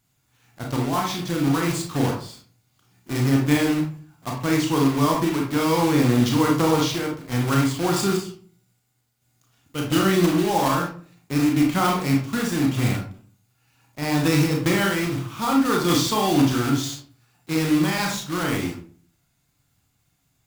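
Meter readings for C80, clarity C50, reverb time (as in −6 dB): 10.5 dB, 5.0 dB, 0.45 s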